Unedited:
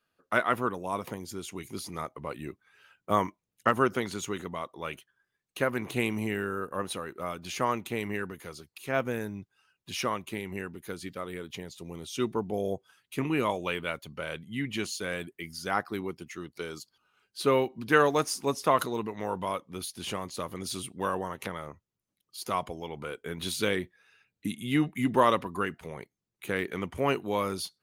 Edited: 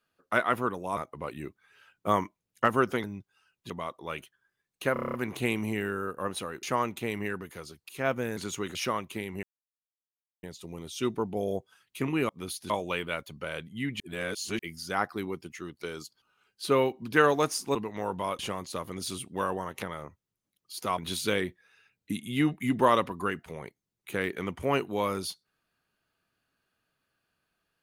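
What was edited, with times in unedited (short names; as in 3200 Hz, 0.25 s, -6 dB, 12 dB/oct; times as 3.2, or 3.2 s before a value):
0.97–2 cut
4.07–4.45 swap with 9.26–9.92
5.68 stutter 0.03 s, 8 plays
7.17–7.52 cut
10.6–11.6 mute
14.76–15.35 reverse
18.51–18.98 cut
19.62–20.03 move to 13.46
22.62–23.33 cut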